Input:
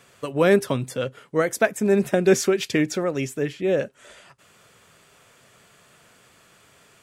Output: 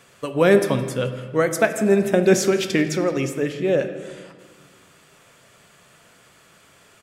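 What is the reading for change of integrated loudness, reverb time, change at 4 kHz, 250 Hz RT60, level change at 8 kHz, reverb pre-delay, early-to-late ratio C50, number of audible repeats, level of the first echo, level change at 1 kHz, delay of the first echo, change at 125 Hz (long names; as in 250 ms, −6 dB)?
+2.0 dB, 1.6 s, +2.0 dB, 2.2 s, +2.0 dB, 3 ms, 9.5 dB, 1, −20.5 dB, +2.0 dB, 166 ms, +3.0 dB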